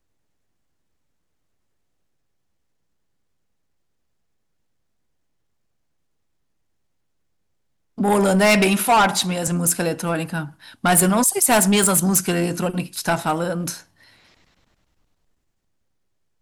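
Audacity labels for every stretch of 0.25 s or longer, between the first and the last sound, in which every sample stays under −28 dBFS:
10.470000	10.840000	silence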